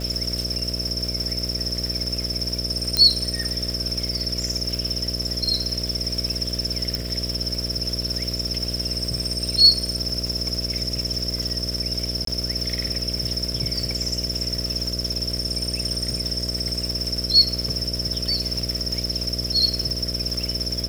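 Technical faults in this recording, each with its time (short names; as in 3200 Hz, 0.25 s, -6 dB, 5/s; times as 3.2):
buzz 60 Hz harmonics 11 -30 dBFS
crackle 400/s -29 dBFS
2.97 pop -4 dBFS
6.95 pop -10 dBFS
12.25–12.27 gap 23 ms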